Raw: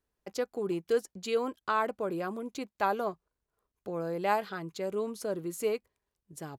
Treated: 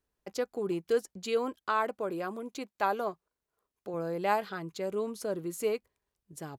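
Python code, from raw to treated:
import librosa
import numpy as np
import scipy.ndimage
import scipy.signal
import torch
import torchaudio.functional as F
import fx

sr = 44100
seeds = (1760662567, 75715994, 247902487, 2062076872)

y = fx.low_shelf(x, sr, hz=120.0, db=-11.5, at=(1.62, 3.94))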